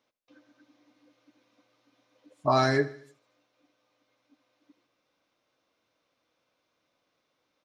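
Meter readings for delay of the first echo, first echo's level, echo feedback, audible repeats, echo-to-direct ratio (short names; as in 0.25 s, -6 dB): 77 ms, -18.0 dB, 50%, 3, -17.0 dB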